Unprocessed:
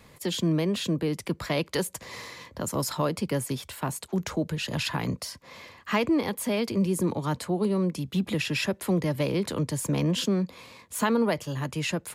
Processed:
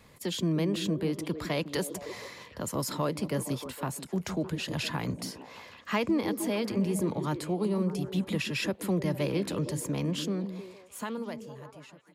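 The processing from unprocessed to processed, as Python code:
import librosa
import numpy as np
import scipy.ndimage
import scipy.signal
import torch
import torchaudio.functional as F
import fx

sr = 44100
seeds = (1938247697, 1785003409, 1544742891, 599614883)

y = fx.fade_out_tail(x, sr, length_s=2.64)
y = fx.echo_stepped(y, sr, ms=154, hz=240.0, octaves=0.7, feedback_pct=70, wet_db=-5.5)
y = y * librosa.db_to_amplitude(-3.5)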